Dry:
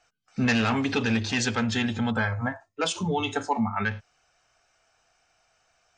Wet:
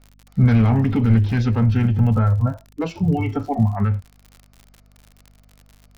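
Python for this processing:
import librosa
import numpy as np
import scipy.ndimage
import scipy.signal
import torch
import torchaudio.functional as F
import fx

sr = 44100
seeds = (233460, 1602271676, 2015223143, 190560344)

y = fx.tilt_eq(x, sr, slope=-4.5)
y = fx.formant_shift(y, sr, semitones=-3)
y = fx.dmg_crackle(y, sr, seeds[0], per_s=66.0, level_db=-34.0)
y = fx.add_hum(y, sr, base_hz=50, snr_db=33)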